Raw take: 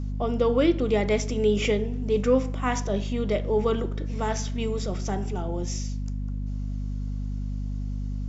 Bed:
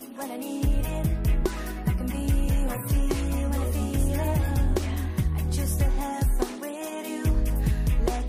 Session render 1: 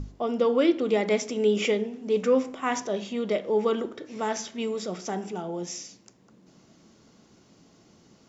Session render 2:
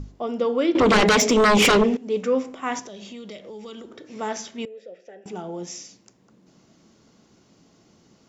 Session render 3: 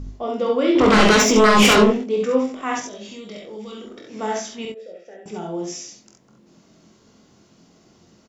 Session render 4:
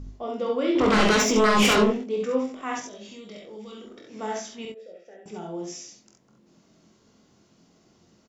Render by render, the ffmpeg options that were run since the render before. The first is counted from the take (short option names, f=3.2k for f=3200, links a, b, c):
-af "bandreject=f=50:t=h:w=6,bandreject=f=100:t=h:w=6,bandreject=f=150:t=h:w=6,bandreject=f=200:t=h:w=6,bandreject=f=250:t=h:w=6,bandreject=f=300:t=h:w=6"
-filter_complex "[0:a]asettb=1/sr,asplit=3[a][b][c];[a]atrim=end=0.754[d];[b]atrim=start=0.75:end=1.97,asetpts=PTS-STARTPTS,afade=t=in:d=0.004:c=qsin,afade=t=out:st=1.216:d=0.004:c=qsin,aeval=exprs='0.237*sin(PI/2*3.98*val(0)/0.237)':c=same[e];[c]atrim=start=1.966[f];[d][e]acrossfade=d=0.004:c1=hsin:c2=qsin[g];[g][f]acrossfade=d=0.004:c1=qsin:c2=hsin,asettb=1/sr,asplit=3[h][i][j];[h]atrim=end=2.794[k];[i]atrim=start=2.79:end=4.1,asetpts=PTS-STARTPTS,afade=t=in:d=0.004:c=qsin,afade=t=out:st=1.306:d=0.004:c=qsin,acrossover=split=140|3000[l][m][n];[m]acompressor=threshold=-38dB:ratio=6:attack=3.2:release=140:knee=2.83:detection=peak[o];[l][o][n]amix=inputs=3:normalize=0[p];[j]atrim=start=4.096[q];[k][p]acrossfade=d=0.004:c1=hsin:c2=qsin[r];[r][q]acrossfade=d=0.004:c1=qsin:c2=hsin,asettb=1/sr,asplit=3[s][t][u];[s]atrim=end=4.654[v];[t]atrim=start=4.65:end=5.26,asetpts=PTS-STARTPTS,afade=t=in:d=0.004:c=qsin,afade=t=out:st=0.606:d=0.004:c=qsin,asplit=3[w][x][y];[w]bandpass=f=530:t=q:w=8,volume=0dB[z];[x]bandpass=f=1.84k:t=q:w=8,volume=-6dB[aa];[y]bandpass=f=2.48k:t=q:w=8,volume=-9dB[ab];[z][aa][ab]amix=inputs=3:normalize=0[ac];[u]atrim=start=5.256[ad];[v][ac]acrossfade=d=0.004:c1=hsin:c2=qsin[ae];[ae][ad]acrossfade=d=0.004:c1=qsin:c2=hsin"
-filter_complex "[0:a]asplit=2[a][b];[b]adelay=23,volume=-6dB[c];[a][c]amix=inputs=2:normalize=0,asplit=2[d][e];[e]aecho=0:1:47|67:0.501|0.631[f];[d][f]amix=inputs=2:normalize=0"
-af "volume=-6dB"